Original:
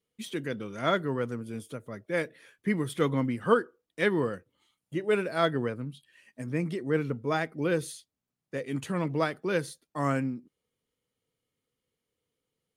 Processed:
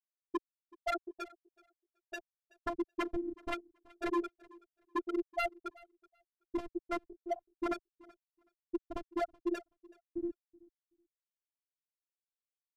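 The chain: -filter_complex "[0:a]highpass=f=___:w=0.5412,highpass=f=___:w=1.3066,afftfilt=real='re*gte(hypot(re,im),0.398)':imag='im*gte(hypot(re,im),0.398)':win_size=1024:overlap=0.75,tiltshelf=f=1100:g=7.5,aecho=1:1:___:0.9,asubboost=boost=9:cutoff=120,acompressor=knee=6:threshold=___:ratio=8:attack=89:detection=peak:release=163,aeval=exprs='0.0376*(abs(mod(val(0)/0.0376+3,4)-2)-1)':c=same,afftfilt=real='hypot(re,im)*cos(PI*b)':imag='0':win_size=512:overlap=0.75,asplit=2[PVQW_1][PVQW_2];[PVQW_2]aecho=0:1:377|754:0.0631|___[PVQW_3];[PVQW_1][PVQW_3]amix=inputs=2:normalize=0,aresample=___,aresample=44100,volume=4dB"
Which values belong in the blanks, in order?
80, 80, 5.9, -30dB, 0.0107, 32000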